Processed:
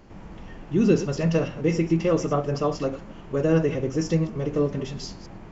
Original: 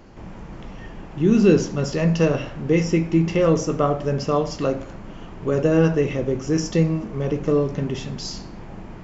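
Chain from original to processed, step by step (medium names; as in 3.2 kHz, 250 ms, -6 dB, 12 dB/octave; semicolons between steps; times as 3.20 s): chunks repeated in reverse 176 ms, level -12 dB; time stretch by phase-locked vocoder 0.61×; trim -3 dB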